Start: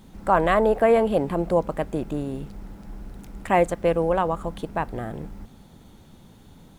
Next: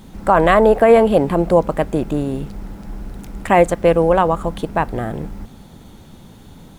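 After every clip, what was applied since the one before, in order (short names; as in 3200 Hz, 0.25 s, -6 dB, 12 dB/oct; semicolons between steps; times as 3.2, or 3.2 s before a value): maximiser +9 dB; gain -1 dB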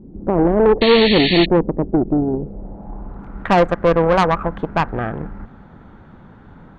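low-pass sweep 360 Hz -> 1500 Hz, 2.18–3.42; tube stage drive 10 dB, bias 0.7; painted sound noise, 0.81–1.46, 1700–4500 Hz -23 dBFS; gain +2.5 dB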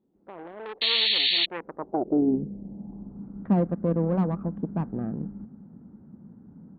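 band-pass sweep 3700 Hz -> 210 Hz, 1.42–2.39; mismatched tape noise reduction decoder only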